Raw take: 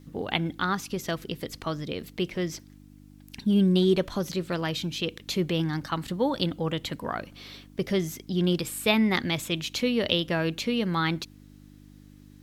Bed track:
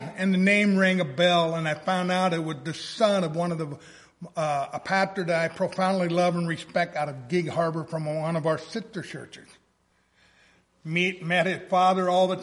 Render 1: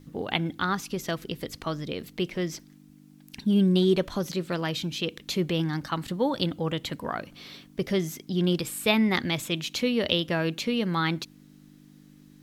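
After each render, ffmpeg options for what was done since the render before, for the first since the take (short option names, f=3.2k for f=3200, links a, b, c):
-af "bandreject=f=50:t=h:w=4,bandreject=f=100:t=h:w=4"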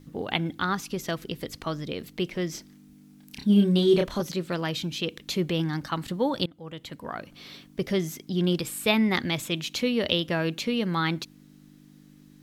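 -filter_complex "[0:a]asettb=1/sr,asplit=3[a][b][c];[a]atrim=end=2.524[d];[b]atrim=start=2.52:end=4.22,asetpts=PTS-STARTPTS,afade=t=in:d=0.004:c=qsin,afade=t=out:st=1.696:d=0.004:c=qsin,asplit=2[e][f];[f]adelay=29,volume=-3.5dB[g];[e][g]amix=inputs=2:normalize=0,atrim=end_sample=74970[h];[c]atrim=start=4.216[i];[d][h]acrossfade=d=0.004:c1=hsin:c2=qsin[j];[j][i]acrossfade=d=0.004:c1=qsin:c2=hsin,asplit=2[k][l];[k]atrim=end=6.46,asetpts=PTS-STARTPTS,afade=t=out:st=6.456:d=0.004:c=hsin:silence=0.0794328[m];[l]atrim=start=6.46,asetpts=PTS-STARTPTS,afade=t=in:d=1.05:silence=0.0794328[n];[m][n]concat=n=2:v=0:a=1"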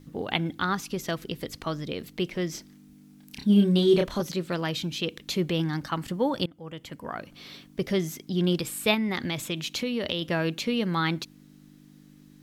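-filter_complex "[0:a]asettb=1/sr,asplit=3[a][b][c];[a]atrim=end=5.904[d];[b]atrim=start=5.9:end=7.2,asetpts=PTS-STARTPTS,afade=t=in:d=0.004:c=qsin,afade=t=out:st=1.296:d=0.004:c=qsin,equalizer=f=3.9k:w=6.1:g=-8.5[e];[c]atrim=start=7.196[f];[d][e]acrossfade=d=0.004:c1=hsin:c2=qsin[g];[g][f]acrossfade=d=0.004:c1=qsin:c2=hsin,asettb=1/sr,asplit=3[h][i][j];[h]atrim=end=8.944[k];[i]atrim=start=8.94:end=10.22,asetpts=PTS-STARTPTS,afade=t=in:d=0.004:c=qsin,afade=t=out:st=1.276:d=0.004:c=qsin,acompressor=threshold=-25dB:ratio=3:attack=3.2:release=140:knee=1:detection=peak[l];[j]atrim=start=10.216[m];[k][l]acrossfade=d=0.004:c1=hsin:c2=qsin[n];[n][m]acrossfade=d=0.004:c1=qsin:c2=hsin"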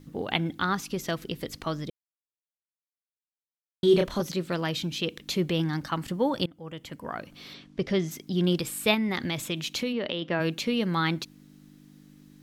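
-filter_complex "[0:a]asplit=3[a][b][c];[a]afade=t=out:st=7.53:d=0.02[d];[b]lowpass=5.7k,afade=t=in:st=7.53:d=0.02,afade=t=out:st=8.1:d=0.02[e];[c]afade=t=in:st=8.1:d=0.02[f];[d][e][f]amix=inputs=3:normalize=0,asplit=3[g][h][i];[g]afade=t=out:st=9.92:d=0.02[j];[h]highpass=170,lowpass=3.1k,afade=t=in:st=9.92:d=0.02,afade=t=out:st=10.39:d=0.02[k];[i]afade=t=in:st=10.39:d=0.02[l];[j][k][l]amix=inputs=3:normalize=0,asplit=3[m][n][o];[m]atrim=end=1.9,asetpts=PTS-STARTPTS,afade=t=out:st=1.896:d=0.004:c=hsin[p];[n]atrim=start=1.9:end=3.83,asetpts=PTS-STARTPTS,volume=0[q];[o]atrim=start=3.83,asetpts=PTS-STARTPTS,afade=t=in:d=0.004:c=hsin[r];[p][q][r]concat=n=3:v=0:a=1"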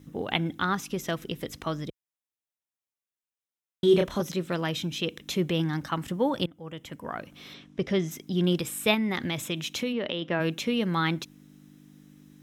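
-af "highpass=41,bandreject=f=4.5k:w=5.8"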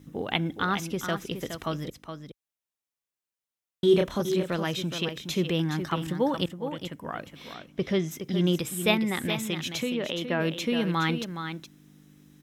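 -af "aecho=1:1:418:0.376"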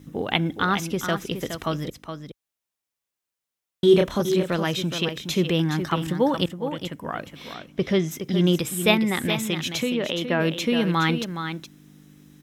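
-af "volume=4.5dB"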